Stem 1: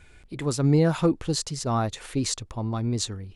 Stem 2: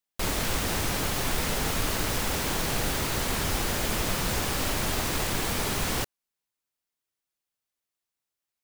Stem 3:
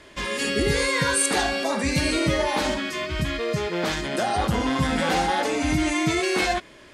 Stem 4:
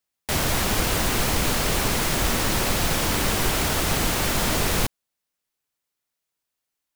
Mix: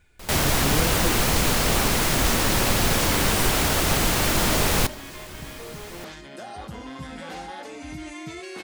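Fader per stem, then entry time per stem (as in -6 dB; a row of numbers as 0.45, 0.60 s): -8.5, -12.5, -14.0, +1.5 dB; 0.00, 0.00, 2.20, 0.00 s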